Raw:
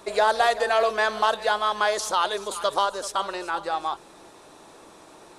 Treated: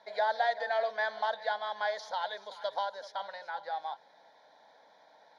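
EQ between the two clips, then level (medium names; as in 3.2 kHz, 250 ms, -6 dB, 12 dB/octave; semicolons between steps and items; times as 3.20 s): band-pass 360–3800 Hz; static phaser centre 1.8 kHz, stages 8; -7.0 dB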